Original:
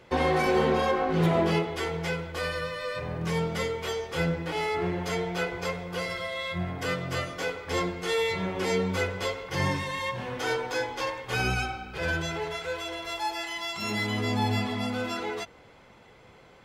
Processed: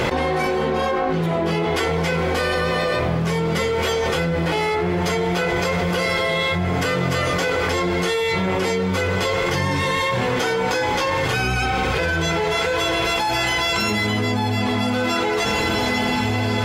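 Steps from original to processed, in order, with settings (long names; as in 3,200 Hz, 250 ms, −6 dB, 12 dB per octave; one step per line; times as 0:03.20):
on a send: feedback delay with all-pass diffusion 1,827 ms, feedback 46%, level −13 dB
on the sum: envelope flattener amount 100%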